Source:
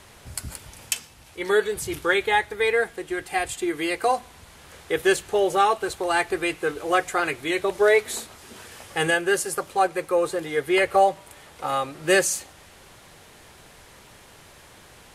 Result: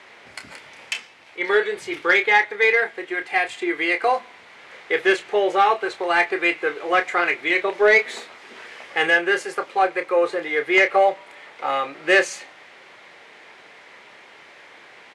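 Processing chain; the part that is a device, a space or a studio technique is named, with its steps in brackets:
intercom (band-pass filter 340–3,800 Hz; parametric band 2,100 Hz +8 dB 0.5 octaves; soft clipping −8.5 dBFS, distortion −22 dB; double-tracking delay 29 ms −9 dB)
level +2.5 dB

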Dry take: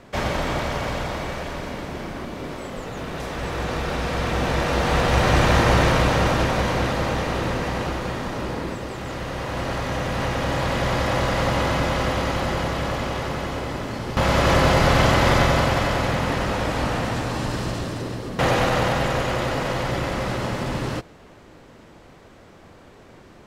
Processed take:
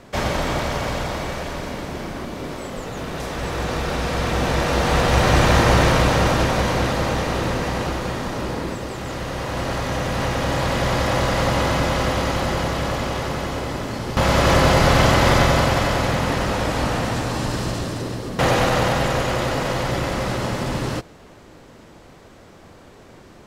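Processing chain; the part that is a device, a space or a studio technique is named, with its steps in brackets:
exciter from parts (in parallel at −6.5 dB: high-pass filter 3,400 Hz 12 dB per octave + soft clipping −27.5 dBFS, distortion −17 dB)
on the sum: level +2 dB

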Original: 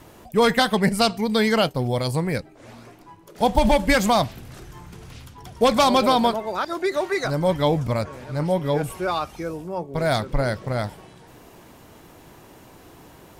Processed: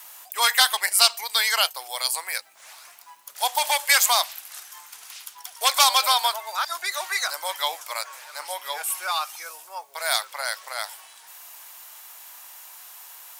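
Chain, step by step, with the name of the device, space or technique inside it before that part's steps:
high-pass filter 810 Hz 24 dB per octave
turntable without a phono preamp (RIAA equalisation recording; white noise bed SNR 37 dB)
high-pass filter 150 Hz 12 dB per octave

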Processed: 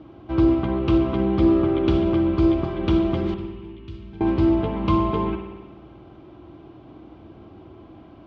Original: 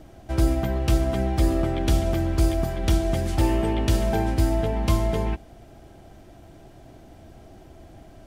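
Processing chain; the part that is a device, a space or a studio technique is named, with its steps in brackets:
guitar cabinet (loudspeaker in its box 79–3,500 Hz, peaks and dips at 320 Hz +8 dB, 670 Hz −6 dB, 1,100 Hz +9 dB, 1,800 Hz −9 dB)
0:03.34–0:04.21: guitar amp tone stack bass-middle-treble 6-0-2
spring reverb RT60 1.3 s, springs 51 ms, chirp 50 ms, DRR 6 dB
level +1 dB

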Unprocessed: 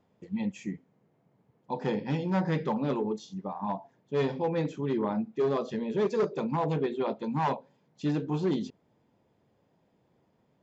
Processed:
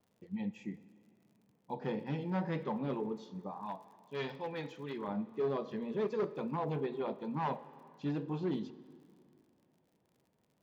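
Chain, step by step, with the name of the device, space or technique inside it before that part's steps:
lo-fi chain (low-pass filter 4,300 Hz 12 dB per octave; tape wow and flutter; surface crackle 63 per second −52 dBFS)
0:03.62–0:05.08: tilt shelving filter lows −7 dB, about 1,100 Hz
dense smooth reverb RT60 2.5 s, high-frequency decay 0.75×, DRR 15 dB
level −7 dB

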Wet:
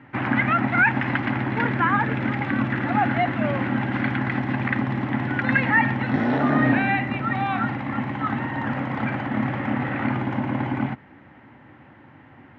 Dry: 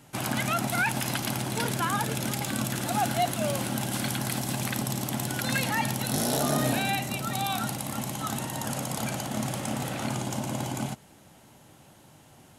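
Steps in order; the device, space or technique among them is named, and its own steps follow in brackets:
bass cabinet (loudspeaker in its box 74–2,200 Hz, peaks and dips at 170 Hz −8 dB, 270 Hz +5 dB, 430 Hz −5 dB, 650 Hz −7 dB, 1,900 Hz +8 dB)
level +7.5 dB

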